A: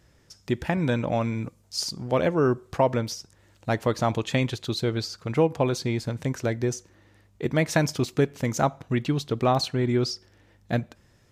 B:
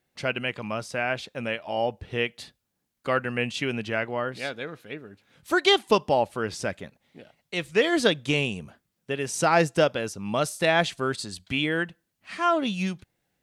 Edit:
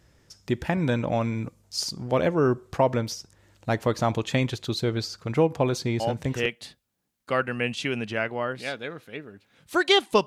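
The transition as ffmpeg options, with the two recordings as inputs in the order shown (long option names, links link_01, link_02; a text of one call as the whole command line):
ffmpeg -i cue0.wav -i cue1.wav -filter_complex "[0:a]apad=whole_dur=10.26,atrim=end=10.26,atrim=end=6.46,asetpts=PTS-STARTPTS[link_01];[1:a]atrim=start=1.77:end=6.03,asetpts=PTS-STARTPTS[link_02];[link_01][link_02]acrossfade=duration=0.46:curve1=log:curve2=log" out.wav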